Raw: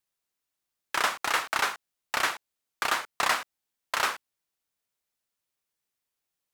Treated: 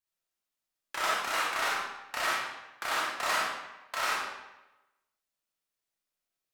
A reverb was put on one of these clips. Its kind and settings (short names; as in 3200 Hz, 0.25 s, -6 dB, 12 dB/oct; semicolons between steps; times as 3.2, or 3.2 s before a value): digital reverb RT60 1 s, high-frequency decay 0.85×, pre-delay 0 ms, DRR -6.5 dB; gain -9.5 dB